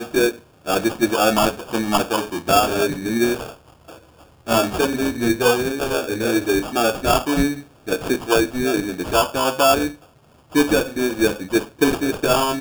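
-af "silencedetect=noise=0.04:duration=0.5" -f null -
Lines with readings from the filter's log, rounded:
silence_start: 3.49
silence_end: 4.48 | silence_duration: 0.99
silence_start: 9.91
silence_end: 10.55 | silence_duration: 0.64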